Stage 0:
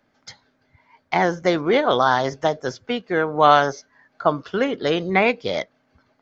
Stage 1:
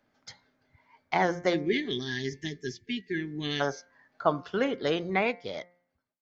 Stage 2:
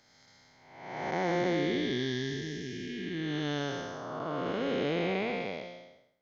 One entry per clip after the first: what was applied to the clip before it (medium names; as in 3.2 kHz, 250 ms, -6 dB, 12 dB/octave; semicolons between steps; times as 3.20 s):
fade out at the end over 1.43 s; time-frequency box 1.54–3.61 s, 450–1600 Hz -30 dB; de-hum 176.4 Hz, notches 13; trim -6 dB
spectral blur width 494 ms; trim +3 dB